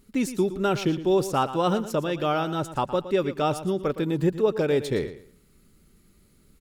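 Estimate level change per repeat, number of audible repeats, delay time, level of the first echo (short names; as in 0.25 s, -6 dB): -12.5 dB, 2, 0.115 s, -13.0 dB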